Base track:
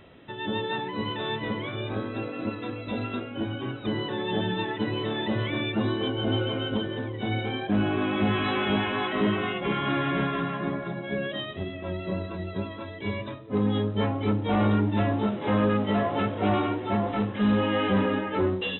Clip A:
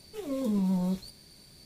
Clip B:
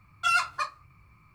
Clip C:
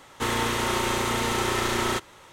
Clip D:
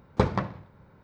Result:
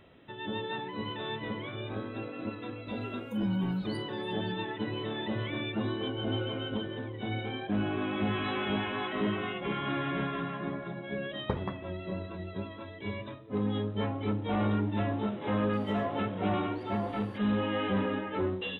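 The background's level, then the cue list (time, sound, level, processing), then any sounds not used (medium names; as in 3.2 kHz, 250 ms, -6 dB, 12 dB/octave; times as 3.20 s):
base track -6 dB
2.87 s: add A -3 dB + spectral noise reduction 24 dB
11.30 s: add D -9.5 dB + low-pass 1.9 kHz
15.73 s: add A -13.5 dB + low-pass that closes with the level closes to 890 Hz, closed at -25 dBFS
not used: B, C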